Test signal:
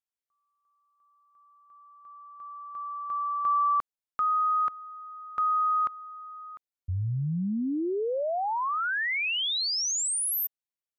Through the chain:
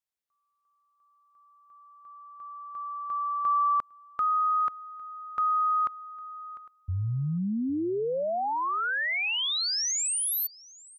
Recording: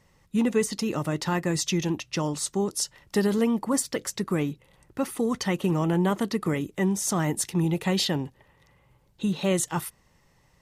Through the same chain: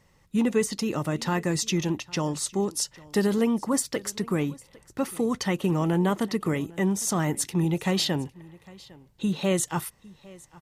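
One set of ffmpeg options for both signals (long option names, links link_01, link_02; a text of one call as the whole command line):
ffmpeg -i in.wav -af "aecho=1:1:805:0.075" out.wav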